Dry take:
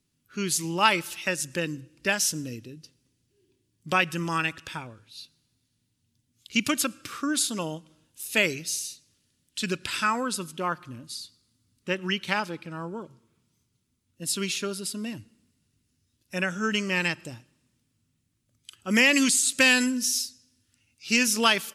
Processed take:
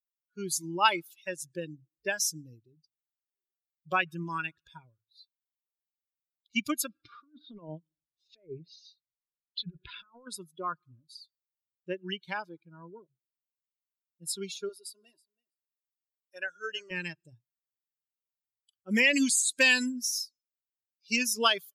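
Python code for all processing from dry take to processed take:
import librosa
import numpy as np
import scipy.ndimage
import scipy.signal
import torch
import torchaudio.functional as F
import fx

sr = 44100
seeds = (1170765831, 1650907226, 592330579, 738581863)

y = fx.chain(x, sr, fx.lowpass(hz=4800.0, slope=24),
    fx.env_lowpass_down(base_hz=1200.0, full_db=-24.5),
    fx.over_compress(threshold_db=-33.0, ratio=-0.5), at=(6.89, 10.27))
y = fx.chain(y, sr, fx.highpass(hz=440.0, slope=12),
    fx.notch(hz=2300.0, q=20.0),
    fx.echo_feedback(ms=326, feedback_pct=18, wet_db=-13.0), at=(14.69, 16.91))
y = fx.bin_expand(y, sr, power=2.0)
y = fx.peak_eq(y, sr, hz=92.0, db=-14.5, octaves=0.99)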